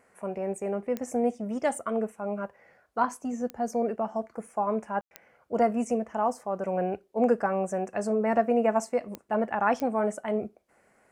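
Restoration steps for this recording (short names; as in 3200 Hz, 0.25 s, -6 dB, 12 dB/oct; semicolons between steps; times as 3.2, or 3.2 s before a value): de-click; room tone fill 5.01–5.11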